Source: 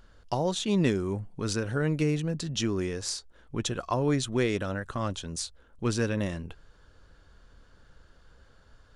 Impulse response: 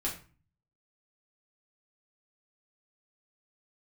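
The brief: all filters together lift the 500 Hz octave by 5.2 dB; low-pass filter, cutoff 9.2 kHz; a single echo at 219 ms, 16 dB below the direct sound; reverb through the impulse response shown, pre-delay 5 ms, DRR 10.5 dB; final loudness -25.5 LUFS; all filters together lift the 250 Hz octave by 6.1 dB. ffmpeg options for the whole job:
-filter_complex "[0:a]lowpass=9200,equalizer=f=250:t=o:g=7,equalizer=f=500:t=o:g=4,aecho=1:1:219:0.158,asplit=2[s0][s1];[1:a]atrim=start_sample=2205,adelay=5[s2];[s1][s2]afir=irnorm=-1:irlink=0,volume=0.188[s3];[s0][s3]amix=inputs=2:normalize=0,volume=0.891"

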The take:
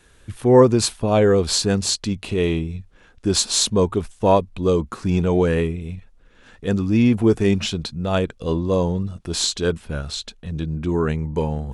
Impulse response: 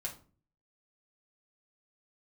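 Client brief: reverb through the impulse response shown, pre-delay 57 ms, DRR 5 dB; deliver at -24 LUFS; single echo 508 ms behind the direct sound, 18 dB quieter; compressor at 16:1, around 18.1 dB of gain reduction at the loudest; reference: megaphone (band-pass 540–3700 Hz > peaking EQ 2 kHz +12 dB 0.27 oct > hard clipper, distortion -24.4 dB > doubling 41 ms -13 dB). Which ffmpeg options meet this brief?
-filter_complex "[0:a]acompressor=threshold=0.0562:ratio=16,aecho=1:1:508:0.126,asplit=2[s0][s1];[1:a]atrim=start_sample=2205,adelay=57[s2];[s1][s2]afir=irnorm=-1:irlink=0,volume=0.596[s3];[s0][s3]amix=inputs=2:normalize=0,highpass=540,lowpass=3700,equalizer=f=2000:t=o:w=0.27:g=12,asoftclip=type=hard:threshold=0.0631,asplit=2[s4][s5];[s5]adelay=41,volume=0.224[s6];[s4][s6]amix=inputs=2:normalize=0,volume=3.76"

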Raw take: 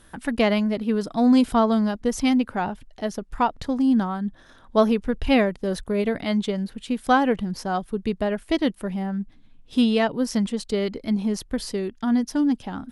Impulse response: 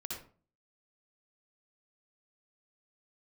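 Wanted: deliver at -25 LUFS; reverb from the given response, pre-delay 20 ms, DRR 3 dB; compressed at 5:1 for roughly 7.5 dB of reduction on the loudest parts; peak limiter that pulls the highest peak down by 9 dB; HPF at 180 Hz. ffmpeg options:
-filter_complex "[0:a]highpass=180,acompressor=threshold=0.0794:ratio=5,alimiter=limit=0.0891:level=0:latency=1,asplit=2[s0][s1];[1:a]atrim=start_sample=2205,adelay=20[s2];[s1][s2]afir=irnorm=-1:irlink=0,volume=0.75[s3];[s0][s3]amix=inputs=2:normalize=0,volume=1.41"

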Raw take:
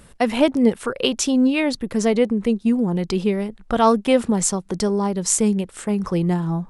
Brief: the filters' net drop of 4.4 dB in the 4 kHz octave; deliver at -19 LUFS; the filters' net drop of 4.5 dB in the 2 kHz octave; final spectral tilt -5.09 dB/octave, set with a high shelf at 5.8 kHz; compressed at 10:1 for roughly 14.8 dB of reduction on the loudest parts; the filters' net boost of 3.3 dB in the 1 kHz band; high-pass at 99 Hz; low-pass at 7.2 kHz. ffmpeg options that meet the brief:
-af "highpass=99,lowpass=7200,equalizer=f=1000:t=o:g=5.5,equalizer=f=2000:t=o:g=-6,equalizer=f=4000:t=o:g=-7,highshelf=f=5800:g=7.5,acompressor=threshold=0.0631:ratio=10,volume=2.99"

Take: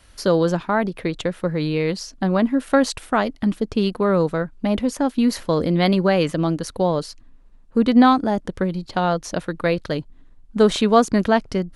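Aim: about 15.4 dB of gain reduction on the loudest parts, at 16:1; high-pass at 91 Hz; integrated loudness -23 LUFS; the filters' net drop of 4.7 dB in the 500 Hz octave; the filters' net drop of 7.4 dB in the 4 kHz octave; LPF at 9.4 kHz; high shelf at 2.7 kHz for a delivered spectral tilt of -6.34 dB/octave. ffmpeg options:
-af "highpass=91,lowpass=9400,equalizer=f=500:t=o:g=-5.5,highshelf=f=2700:g=-4,equalizer=f=4000:t=o:g=-6,acompressor=threshold=0.0562:ratio=16,volume=2.51"

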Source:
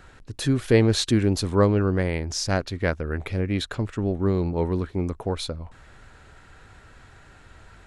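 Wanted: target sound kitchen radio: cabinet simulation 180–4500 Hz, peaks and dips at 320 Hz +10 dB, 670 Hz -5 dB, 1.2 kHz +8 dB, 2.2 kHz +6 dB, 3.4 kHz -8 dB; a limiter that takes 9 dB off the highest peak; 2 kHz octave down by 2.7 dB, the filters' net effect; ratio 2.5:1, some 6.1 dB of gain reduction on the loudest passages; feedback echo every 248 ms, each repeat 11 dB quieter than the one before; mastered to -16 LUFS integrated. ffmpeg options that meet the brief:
-af "equalizer=f=2000:t=o:g=-7,acompressor=threshold=0.0794:ratio=2.5,alimiter=limit=0.0891:level=0:latency=1,highpass=180,equalizer=f=320:t=q:w=4:g=10,equalizer=f=670:t=q:w=4:g=-5,equalizer=f=1200:t=q:w=4:g=8,equalizer=f=2200:t=q:w=4:g=6,equalizer=f=3400:t=q:w=4:g=-8,lowpass=f=4500:w=0.5412,lowpass=f=4500:w=1.3066,aecho=1:1:248|496|744:0.282|0.0789|0.0221,volume=4.73"

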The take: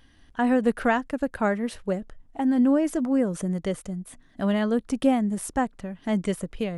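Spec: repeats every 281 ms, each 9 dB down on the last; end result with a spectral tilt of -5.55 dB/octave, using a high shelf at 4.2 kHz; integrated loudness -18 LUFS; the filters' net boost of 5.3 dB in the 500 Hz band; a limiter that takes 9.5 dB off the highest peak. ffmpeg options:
-af "equalizer=f=500:t=o:g=6,highshelf=f=4200:g=6.5,alimiter=limit=0.168:level=0:latency=1,aecho=1:1:281|562|843|1124:0.355|0.124|0.0435|0.0152,volume=2.24"

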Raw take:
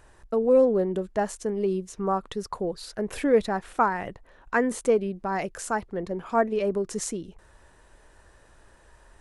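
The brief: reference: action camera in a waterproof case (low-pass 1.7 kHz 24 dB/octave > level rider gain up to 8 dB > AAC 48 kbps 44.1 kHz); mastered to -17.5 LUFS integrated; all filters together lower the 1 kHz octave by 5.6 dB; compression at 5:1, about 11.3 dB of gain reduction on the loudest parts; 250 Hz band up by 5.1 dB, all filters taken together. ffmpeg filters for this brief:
-af "equalizer=f=250:t=o:g=6.5,equalizer=f=1000:t=o:g=-8,acompressor=threshold=0.0501:ratio=5,lowpass=f=1700:w=0.5412,lowpass=f=1700:w=1.3066,dynaudnorm=m=2.51,volume=5.31" -ar 44100 -c:a aac -b:a 48k

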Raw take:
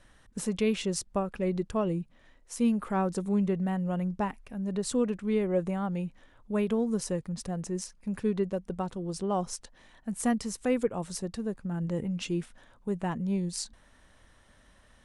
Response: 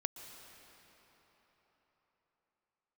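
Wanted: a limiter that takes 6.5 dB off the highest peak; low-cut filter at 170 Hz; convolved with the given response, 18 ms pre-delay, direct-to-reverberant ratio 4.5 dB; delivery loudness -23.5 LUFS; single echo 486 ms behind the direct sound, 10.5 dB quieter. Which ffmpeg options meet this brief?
-filter_complex "[0:a]highpass=170,alimiter=limit=0.0794:level=0:latency=1,aecho=1:1:486:0.299,asplit=2[s0][s1];[1:a]atrim=start_sample=2205,adelay=18[s2];[s1][s2]afir=irnorm=-1:irlink=0,volume=0.596[s3];[s0][s3]amix=inputs=2:normalize=0,volume=2.82"

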